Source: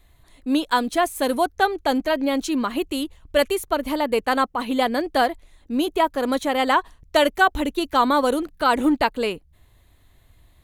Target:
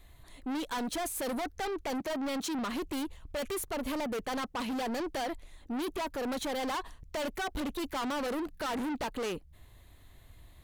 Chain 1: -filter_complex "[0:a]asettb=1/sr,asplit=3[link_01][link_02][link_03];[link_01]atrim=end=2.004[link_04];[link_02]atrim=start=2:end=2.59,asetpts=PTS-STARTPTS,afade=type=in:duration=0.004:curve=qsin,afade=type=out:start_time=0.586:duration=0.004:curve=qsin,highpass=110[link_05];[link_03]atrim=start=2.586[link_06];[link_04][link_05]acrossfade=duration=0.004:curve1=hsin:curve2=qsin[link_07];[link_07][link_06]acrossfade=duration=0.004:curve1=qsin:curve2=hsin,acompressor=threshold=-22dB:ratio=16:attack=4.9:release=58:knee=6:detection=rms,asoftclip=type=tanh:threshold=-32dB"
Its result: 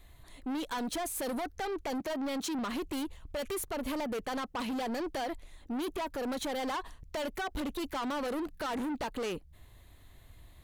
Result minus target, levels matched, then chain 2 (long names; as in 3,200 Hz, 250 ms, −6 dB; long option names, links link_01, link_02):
downward compressor: peak gain reduction +6.5 dB
-filter_complex "[0:a]asettb=1/sr,asplit=3[link_01][link_02][link_03];[link_01]atrim=end=2.004[link_04];[link_02]atrim=start=2:end=2.59,asetpts=PTS-STARTPTS,afade=type=in:duration=0.004:curve=qsin,afade=type=out:start_time=0.586:duration=0.004:curve=qsin,highpass=110[link_05];[link_03]atrim=start=2.586[link_06];[link_04][link_05]acrossfade=duration=0.004:curve1=hsin:curve2=qsin[link_07];[link_07][link_06]acrossfade=duration=0.004:curve1=qsin:curve2=hsin,acompressor=threshold=-15dB:ratio=16:attack=4.9:release=58:knee=6:detection=rms,asoftclip=type=tanh:threshold=-32dB"